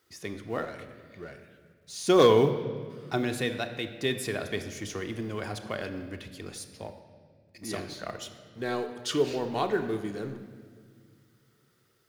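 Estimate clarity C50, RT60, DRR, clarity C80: 10.0 dB, 1.9 s, 6.5 dB, 11.0 dB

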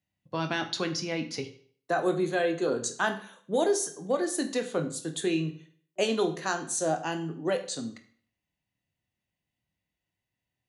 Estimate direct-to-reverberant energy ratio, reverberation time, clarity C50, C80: 6.5 dB, 0.55 s, 12.0 dB, 15.5 dB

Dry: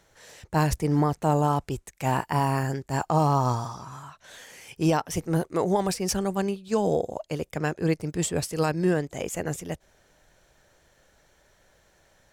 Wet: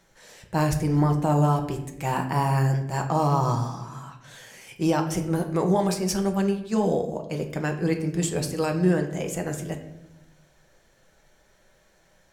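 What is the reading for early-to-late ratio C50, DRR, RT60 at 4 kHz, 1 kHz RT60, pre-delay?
9.5 dB, 3.0 dB, 0.50 s, 0.75 s, 5 ms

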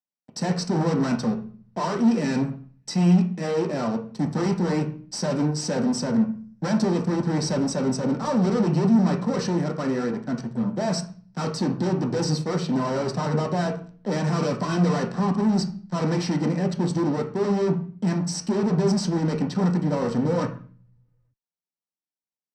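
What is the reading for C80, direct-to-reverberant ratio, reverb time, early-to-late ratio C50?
16.0 dB, 3.0 dB, 0.45 s, 10.5 dB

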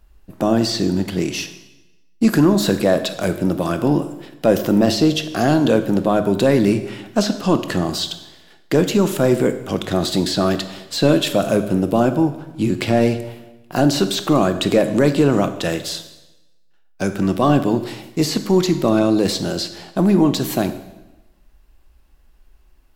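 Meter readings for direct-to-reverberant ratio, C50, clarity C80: 9.5 dB, 11.5 dB, 13.5 dB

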